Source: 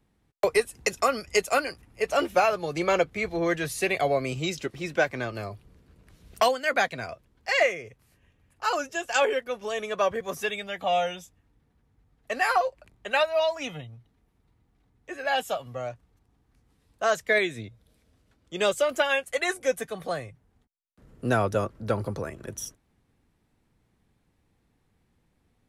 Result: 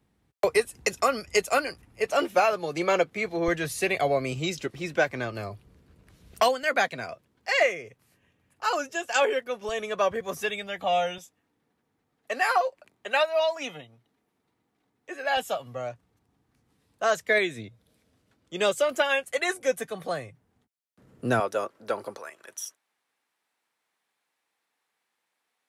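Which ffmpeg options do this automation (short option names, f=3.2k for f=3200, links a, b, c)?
-af "asetnsamples=n=441:p=0,asendcmd='2.06 highpass f 160;3.48 highpass f 52;6.63 highpass f 130;9.69 highpass f 60;11.18 highpass f 250;15.37 highpass f 110;21.4 highpass f 440;22.17 highpass f 910',highpass=49"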